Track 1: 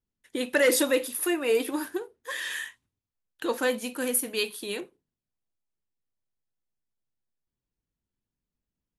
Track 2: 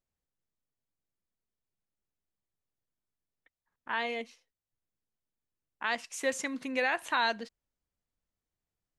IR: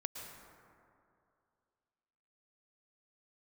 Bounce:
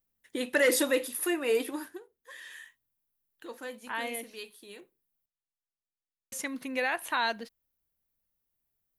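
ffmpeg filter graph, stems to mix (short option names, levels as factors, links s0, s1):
-filter_complex "[0:a]equalizer=f=1900:w=7.3:g=3.5,volume=0.708,afade=t=out:st=1.57:d=0.45:silence=0.251189,asplit=2[s0][s1];[1:a]aexciter=amount=5.9:drive=4.2:freq=10000,volume=0.944,asplit=3[s2][s3][s4];[s2]atrim=end=5.26,asetpts=PTS-STARTPTS,afade=t=out:st=5.256:d=0.004:c=hsin[s5];[s3]atrim=start=5.26:end=6.32,asetpts=PTS-STARTPTS,volume=0[s6];[s4]atrim=start=6.32,asetpts=PTS-STARTPTS,afade=t=in:d=0.004:c=hsin[s7];[s5][s6][s7]concat=n=3:v=0:a=1[s8];[s1]apad=whole_len=396174[s9];[s8][s9]sidechaincompress=threshold=0.0126:ratio=8:attack=24:release=1140[s10];[s0][s10]amix=inputs=2:normalize=0"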